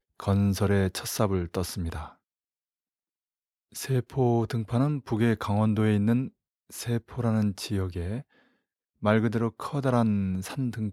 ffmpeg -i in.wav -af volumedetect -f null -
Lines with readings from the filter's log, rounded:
mean_volume: -27.7 dB
max_volume: -7.5 dB